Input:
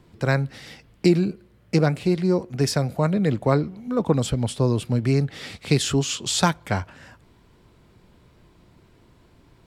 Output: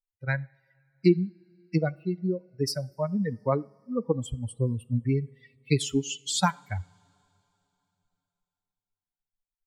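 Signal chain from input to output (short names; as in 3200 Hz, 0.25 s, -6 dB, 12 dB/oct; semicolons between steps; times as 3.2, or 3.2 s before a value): per-bin expansion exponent 3; two-slope reverb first 0.51 s, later 3.3 s, from -18 dB, DRR 20 dB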